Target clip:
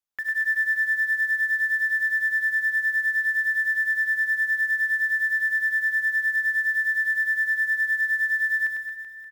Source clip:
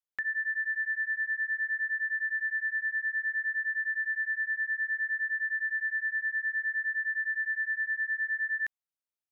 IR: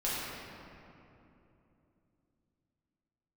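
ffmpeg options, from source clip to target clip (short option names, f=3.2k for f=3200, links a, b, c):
-filter_complex "[0:a]acrusher=bits=5:mode=log:mix=0:aa=0.000001,aecho=1:1:100|225|381.2|576.6|820.7:0.631|0.398|0.251|0.158|0.1,asplit=2[a][b];[1:a]atrim=start_sample=2205[c];[b][c]afir=irnorm=-1:irlink=0,volume=-17dB[d];[a][d]amix=inputs=2:normalize=0"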